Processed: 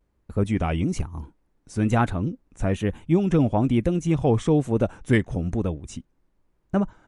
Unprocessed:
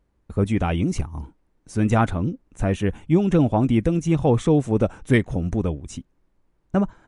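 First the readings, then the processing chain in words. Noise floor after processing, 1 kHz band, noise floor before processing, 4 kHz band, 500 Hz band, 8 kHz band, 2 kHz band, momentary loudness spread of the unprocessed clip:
-70 dBFS, -2.0 dB, -67 dBFS, -2.0 dB, -2.0 dB, -2.0 dB, -1.5 dB, 12 LU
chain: vibrato 1.1 Hz 71 cents; gain -2 dB

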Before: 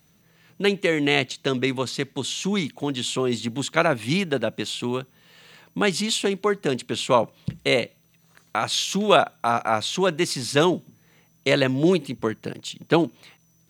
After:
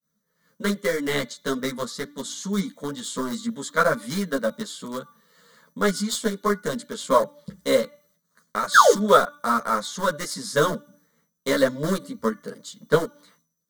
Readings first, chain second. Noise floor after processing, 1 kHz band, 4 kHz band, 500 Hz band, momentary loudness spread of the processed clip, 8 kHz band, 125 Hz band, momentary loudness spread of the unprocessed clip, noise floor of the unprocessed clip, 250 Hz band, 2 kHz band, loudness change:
-75 dBFS, +2.5 dB, -5.5 dB, 0.0 dB, 14 LU, +0.5 dB, -5.0 dB, 9 LU, -61 dBFS, -3.0 dB, 0.0 dB, -0.5 dB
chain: painted sound fall, 8.74–8.94, 310–1800 Hz -13 dBFS; low shelf 72 Hz -12 dB; de-hum 291.6 Hz, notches 15; in parallel at -5 dB: sample gate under -17 dBFS; on the sum: expander -52 dBFS; fixed phaser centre 520 Hz, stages 8; ensemble effect; gain +2.5 dB

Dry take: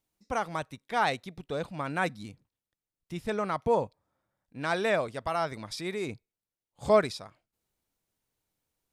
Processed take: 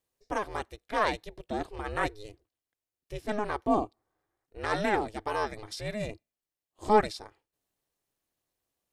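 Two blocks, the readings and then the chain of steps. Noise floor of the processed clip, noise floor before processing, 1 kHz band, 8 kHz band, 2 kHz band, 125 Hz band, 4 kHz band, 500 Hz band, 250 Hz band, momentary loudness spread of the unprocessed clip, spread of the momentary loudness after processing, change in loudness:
under -85 dBFS, under -85 dBFS, +1.0 dB, -1.5 dB, -1.0 dB, -2.0 dB, -1.5 dB, -2.0 dB, +1.5 dB, 16 LU, 15 LU, -0.5 dB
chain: notch comb 1200 Hz; ring modulator 210 Hz; gain +3 dB

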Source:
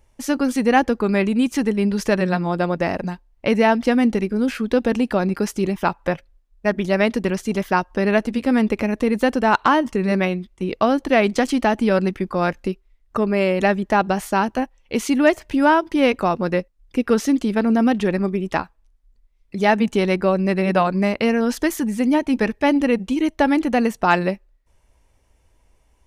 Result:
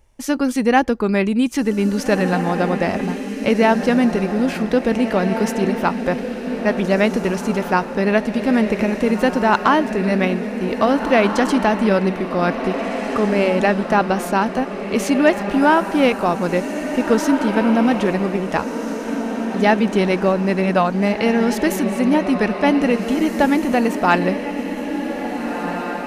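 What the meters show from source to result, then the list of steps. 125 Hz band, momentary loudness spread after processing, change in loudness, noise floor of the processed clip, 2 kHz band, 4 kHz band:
+2.0 dB, 8 LU, +1.5 dB, -28 dBFS, +2.0 dB, +2.0 dB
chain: diffused feedback echo 1.761 s, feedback 43%, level -7 dB; gain +1 dB

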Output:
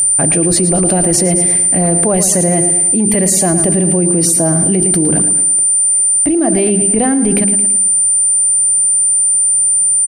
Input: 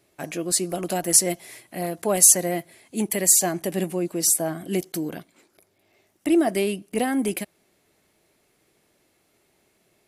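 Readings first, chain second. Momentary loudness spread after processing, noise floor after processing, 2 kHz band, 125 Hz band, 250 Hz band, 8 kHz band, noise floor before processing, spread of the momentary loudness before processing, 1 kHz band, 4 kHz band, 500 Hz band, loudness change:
2 LU, -12 dBFS, +7.0 dB, +17.5 dB, +12.5 dB, +15.0 dB, -67 dBFS, 17 LU, +9.0 dB, +4.5 dB, +10.0 dB, +12.0 dB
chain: RIAA curve playback; notches 50/100/150/200/250/300/350/400 Hz; in parallel at +3 dB: limiter -17.5 dBFS, peak gain reduction 10.5 dB; on the sum: whine 9100 Hz -19 dBFS; feedback echo 0.111 s, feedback 46%, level -12 dB; fast leveller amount 100%; gain -4.5 dB

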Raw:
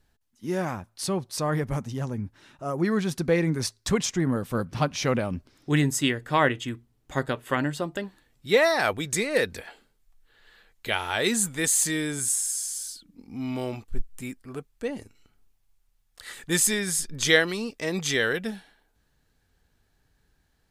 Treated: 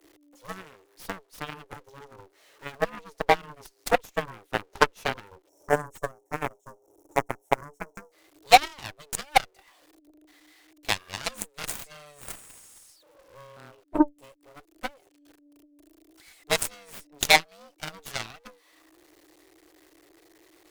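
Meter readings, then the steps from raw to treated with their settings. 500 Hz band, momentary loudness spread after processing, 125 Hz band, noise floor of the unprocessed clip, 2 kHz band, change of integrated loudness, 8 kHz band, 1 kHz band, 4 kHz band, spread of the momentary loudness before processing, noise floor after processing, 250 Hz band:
-4.0 dB, 23 LU, -13.5 dB, -70 dBFS, -2.0 dB, -1.0 dB, -9.0 dB, +5.5 dB, 0.0 dB, 17 LU, -65 dBFS, -7.0 dB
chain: zero-crossing step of -30 dBFS; spectral gain 5.49–8.12, 690–5100 Hz -26 dB; transient shaper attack +11 dB, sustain -11 dB; frequency shift +290 Hz; added harmonics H 7 -16 dB, 8 -26 dB, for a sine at 2 dBFS; gain -3 dB

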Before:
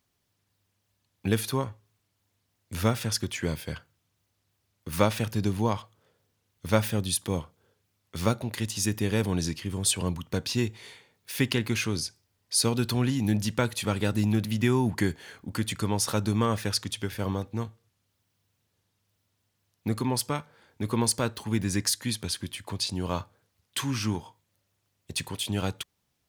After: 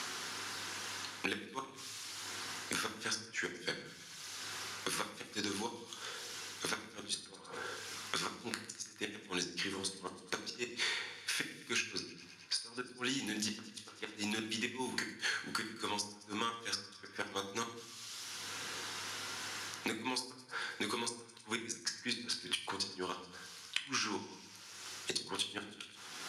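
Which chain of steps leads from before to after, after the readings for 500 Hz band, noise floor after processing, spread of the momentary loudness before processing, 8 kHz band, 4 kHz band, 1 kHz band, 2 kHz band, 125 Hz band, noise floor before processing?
-13.5 dB, -55 dBFS, 10 LU, -8.5 dB, -4.5 dB, -7.5 dB, -2.0 dB, -25.0 dB, -77 dBFS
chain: high shelf 3700 Hz +8 dB; reverse; compressor 6:1, threshold -35 dBFS, peak gain reduction 19.5 dB; reverse; flipped gate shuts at -26 dBFS, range -41 dB; speaker cabinet 410–9200 Hz, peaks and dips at 620 Hz -10 dB, 1500 Hz +6 dB, 8200 Hz -8 dB; on a send: thin delay 0.106 s, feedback 60%, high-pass 1400 Hz, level -19 dB; on the sum: shoebox room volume 51 m³, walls mixed, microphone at 0.48 m; three-band squash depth 100%; gain +8.5 dB

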